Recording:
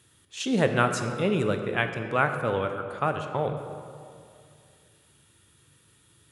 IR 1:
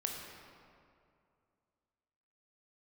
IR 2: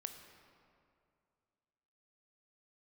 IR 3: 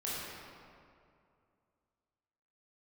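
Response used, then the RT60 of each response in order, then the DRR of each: 2; 2.4, 2.4, 2.4 seconds; 0.0, 6.0, −8.5 decibels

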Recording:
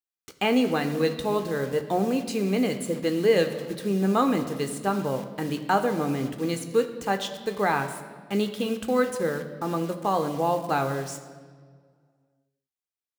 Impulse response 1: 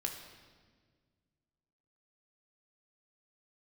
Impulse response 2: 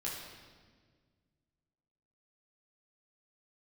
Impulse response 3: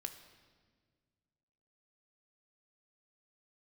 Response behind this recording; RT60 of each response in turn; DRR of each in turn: 3; 1.6, 1.6, 1.7 seconds; 2.0, −6.0, 7.0 decibels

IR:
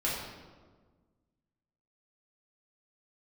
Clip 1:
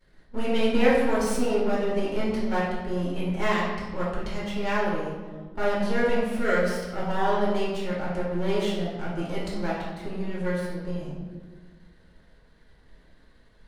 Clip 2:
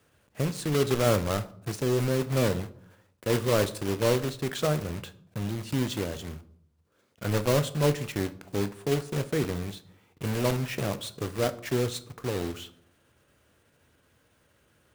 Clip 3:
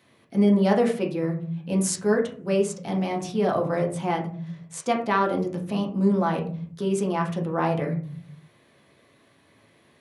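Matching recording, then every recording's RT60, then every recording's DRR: 1; 1.5, 0.70, 0.45 seconds; −7.0, 11.5, 0.0 decibels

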